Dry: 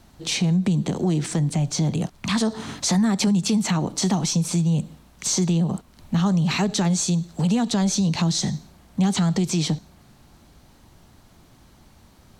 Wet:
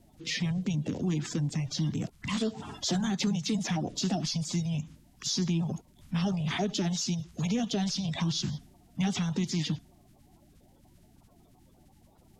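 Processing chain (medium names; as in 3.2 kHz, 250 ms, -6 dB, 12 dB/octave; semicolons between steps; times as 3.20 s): coarse spectral quantiser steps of 30 dB; formant shift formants -3 st; trim -7 dB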